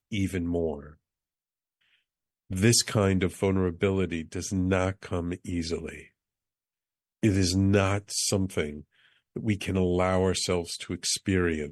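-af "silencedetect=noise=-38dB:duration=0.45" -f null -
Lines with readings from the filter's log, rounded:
silence_start: 0.87
silence_end: 2.51 | silence_duration: 1.63
silence_start: 6.00
silence_end: 7.23 | silence_duration: 1.23
silence_start: 8.81
silence_end: 9.36 | silence_duration: 0.55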